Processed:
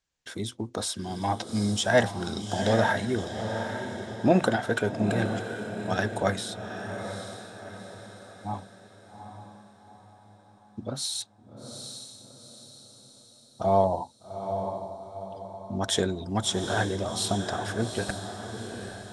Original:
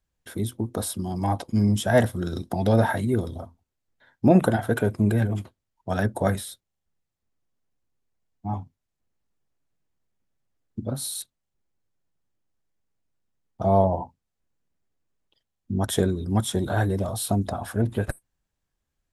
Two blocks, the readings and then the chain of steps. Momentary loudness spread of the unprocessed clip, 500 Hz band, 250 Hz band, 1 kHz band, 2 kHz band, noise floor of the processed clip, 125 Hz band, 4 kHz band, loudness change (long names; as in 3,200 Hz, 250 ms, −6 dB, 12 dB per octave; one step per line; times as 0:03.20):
15 LU, −1.5 dB, −4.5 dB, 0.0 dB, +2.5 dB, −56 dBFS, −7.0 dB, +5.5 dB, −4.0 dB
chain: low-pass filter 7,100 Hz 24 dB per octave
spectral tilt +2.5 dB per octave
feedback delay with all-pass diffusion 815 ms, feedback 46%, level −7.5 dB